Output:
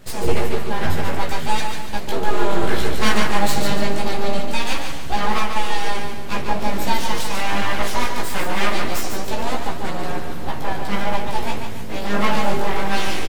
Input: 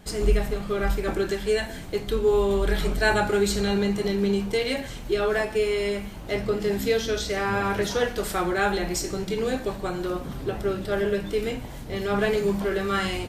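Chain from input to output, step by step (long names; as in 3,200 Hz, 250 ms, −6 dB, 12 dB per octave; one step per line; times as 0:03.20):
full-wave rectification
multi-voice chorus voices 2, 0.2 Hz, delay 16 ms, depth 3.6 ms
repeating echo 144 ms, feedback 41%, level −6 dB
level +8 dB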